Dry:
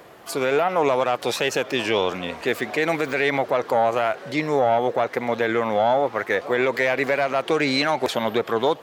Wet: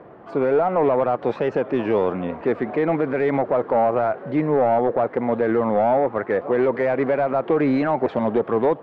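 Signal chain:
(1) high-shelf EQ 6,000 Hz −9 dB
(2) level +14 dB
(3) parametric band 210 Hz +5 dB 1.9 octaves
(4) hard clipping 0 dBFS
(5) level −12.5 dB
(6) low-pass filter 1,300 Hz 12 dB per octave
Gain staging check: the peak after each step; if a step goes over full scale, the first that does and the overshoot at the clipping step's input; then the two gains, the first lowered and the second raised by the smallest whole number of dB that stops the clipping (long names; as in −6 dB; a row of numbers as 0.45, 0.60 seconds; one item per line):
−10.0, +4.0, +6.5, 0.0, −12.5, −12.0 dBFS
step 2, 6.5 dB
step 2 +7 dB, step 5 −5.5 dB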